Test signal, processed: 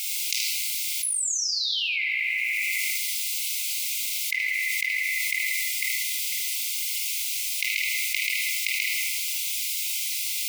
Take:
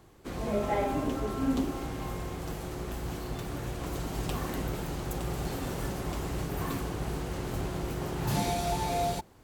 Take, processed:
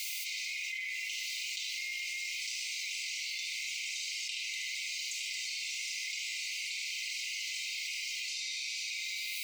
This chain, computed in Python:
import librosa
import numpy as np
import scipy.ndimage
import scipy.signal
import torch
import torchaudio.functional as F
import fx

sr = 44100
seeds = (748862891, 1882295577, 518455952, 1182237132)

y = fx.fade_out_tail(x, sr, length_s=0.68)
y = scipy.signal.sosfilt(scipy.signal.butter(4, 6600.0, 'lowpass', fs=sr, output='sos'), y)
y = fx.dereverb_blind(y, sr, rt60_s=1.8)
y = fx.peak_eq(y, sr, hz=3100.0, db=-3.0, octaves=0.67)
y = fx.notch(y, sr, hz=3400.0, q=15.0)
y = fx.rider(y, sr, range_db=4, speed_s=2.0)
y = fx.quant_dither(y, sr, seeds[0], bits=12, dither='triangular')
y = fx.brickwall_highpass(y, sr, low_hz=2000.0)
y = y + 10.0 ** (-9.0 / 20.0) * np.pad(y, (int(75 * sr / 1000.0), 0))[:len(y)]
y = fx.room_shoebox(y, sr, seeds[1], volume_m3=1400.0, walls='mixed', distance_m=2.7)
y = fx.env_flatten(y, sr, amount_pct=100)